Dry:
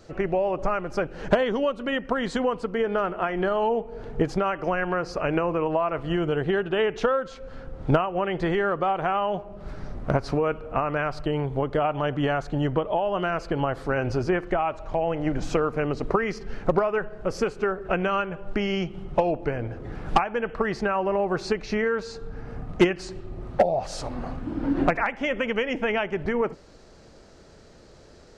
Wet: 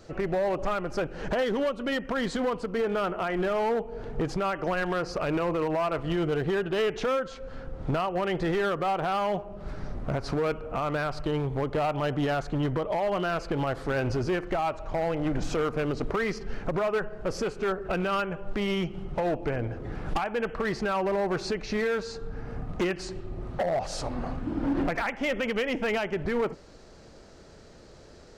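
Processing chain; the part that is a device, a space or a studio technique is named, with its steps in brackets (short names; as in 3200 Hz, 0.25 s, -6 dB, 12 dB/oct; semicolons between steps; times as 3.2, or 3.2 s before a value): limiter into clipper (limiter -17 dBFS, peak gain reduction 7.5 dB; hard clip -22.5 dBFS, distortion -14 dB)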